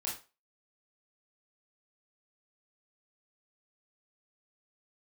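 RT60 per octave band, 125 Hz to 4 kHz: 0.30, 0.25, 0.30, 0.30, 0.30, 0.30 seconds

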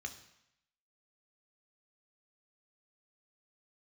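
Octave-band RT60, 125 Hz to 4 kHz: 0.80, 0.80, 0.75, 0.85, 0.85, 0.80 seconds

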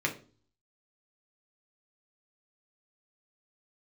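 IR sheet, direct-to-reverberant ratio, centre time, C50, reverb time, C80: 0.5 dB, 12 ms, 12.5 dB, 0.40 s, 18.0 dB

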